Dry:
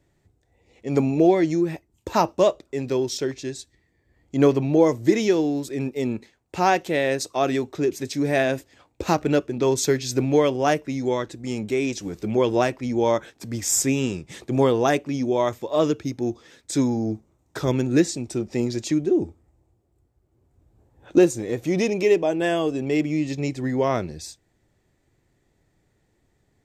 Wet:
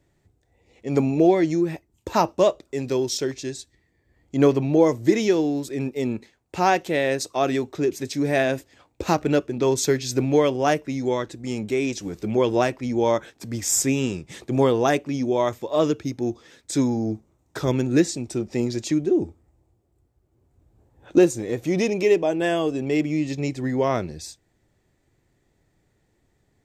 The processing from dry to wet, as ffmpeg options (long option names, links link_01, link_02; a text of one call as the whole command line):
ffmpeg -i in.wav -filter_complex "[0:a]asettb=1/sr,asplit=3[link_01][link_02][link_03];[link_01]atrim=end=2.624[link_04];[link_02]atrim=start=2.62:end=3.56,asetpts=PTS-STARTPTS,afade=type=in:duration=0.004:curve=qsin,afade=type=out:start_time=0.936:duration=0.004:curve=qsin,bass=frequency=250:gain=0,treble=frequency=4000:gain=4[link_05];[link_03]atrim=start=3.556[link_06];[link_04][link_05]acrossfade=duration=0.004:curve1=hsin:curve2=qsin[link_07];[link_07][link_06]acrossfade=duration=0.004:curve1=qsin:curve2=hsin" out.wav